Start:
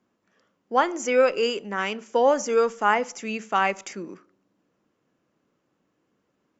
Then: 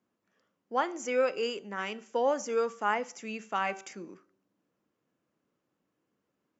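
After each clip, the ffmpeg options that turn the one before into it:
ffmpeg -i in.wav -af "highpass=43,bandreject=frequency=386.1:width_type=h:width=4,bandreject=frequency=772.2:width_type=h:width=4,bandreject=frequency=1158.3:width_type=h:width=4,bandreject=frequency=1544.4:width_type=h:width=4,bandreject=frequency=1930.5:width_type=h:width=4,bandreject=frequency=2316.6:width_type=h:width=4,bandreject=frequency=2702.7:width_type=h:width=4,bandreject=frequency=3088.8:width_type=h:width=4,bandreject=frequency=3474.9:width_type=h:width=4,bandreject=frequency=3861:width_type=h:width=4,bandreject=frequency=4247.1:width_type=h:width=4,bandreject=frequency=4633.2:width_type=h:width=4,bandreject=frequency=5019.3:width_type=h:width=4,bandreject=frequency=5405.4:width_type=h:width=4,bandreject=frequency=5791.5:width_type=h:width=4,bandreject=frequency=6177.6:width_type=h:width=4,bandreject=frequency=6563.7:width_type=h:width=4,bandreject=frequency=6949.8:width_type=h:width=4,bandreject=frequency=7335.9:width_type=h:width=4,bandreject=frequency=7722:width_type=h:width=4,bandreject=frequency=8108.1:width_type=h:width=4,bandreject=frequency=8494.2:width_type=h:width=4,bandreject=frequency=8880.3:width_type=h:width=4,bandreject=frequency=9266.4:width_type=h:width=4,bandreject=frequency=9652.5:width_type=h:width=4,bandreject=frequency=10038.6:width_type=h:width=4,bandreject=frequency=10424.7:width_type=h:width=4,bandreject=frequency=10810.8:width_type=h:width=4,bandreject=frequency=11196.9:width_type=h:width=4,volume=-8dB" out.wav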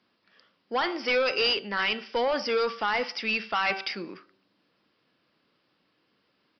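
ffmpeg -i in.wav -af "alimiter=limit=-22.5dB:level=0:latency=1:release=32,crystalizer=i=9.5:c=0,aresample=11025,asoftclip=type=tanh:threshold=-25.5dB,aresample=44100,volume=5.5dB" out.wav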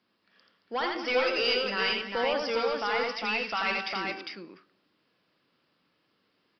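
ffmpeg -i in.wav -filter_complex "[0:a]acontrast=24,asplit=2[link_01][link_02];[link_02]aecho=0:1:84|223|403:0.668|0.237|0.668[link_03];[link_01][link_03]amix=inputs=2:normalize=0,volume=-9dB" out.wav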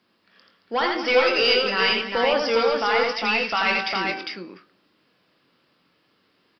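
ffmpeg -i in.wav -filter_complex "[0:a]asplit=2[link_01][link_02];[link_02]adelay=22,volume=-10.5dB[link_03];[link_01][link_03]amix=inputs=2:normalize=0,volume=7dB" out.wav

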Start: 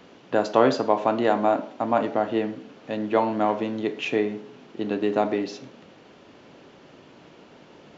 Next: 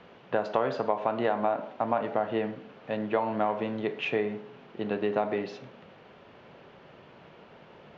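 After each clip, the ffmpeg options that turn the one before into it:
ffmpeg -i in.wav -af "lowpass=2900,equalizer=frequency=290:width=2.5:gain=-10,acompressor=threshold=-22dB:ratio=6" out.wav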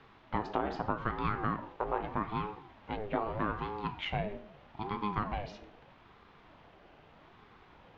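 ffmpeg -i in.wav -af "aeval=exprs='val(0)*sin(2*PI*410*n/s+410*0.55/0.8*sin(2*PI*0.8*n/s))':channel_layout=same,volume=-3dB" out.wav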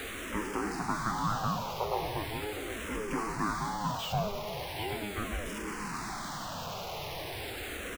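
ffmpeg -i in.wav -filter_complex "[0:a]aeval=exprs='val(0)+0.5*0.0282*sgn(val(0))':channel_layout=same,aecho=1:1:765:0.316,asplit=2[link_01][link_02];[link_02]afreqshift=-0.39[link_03];[link_01][link_03]amix=inputs=2:normalize=1" out.wav

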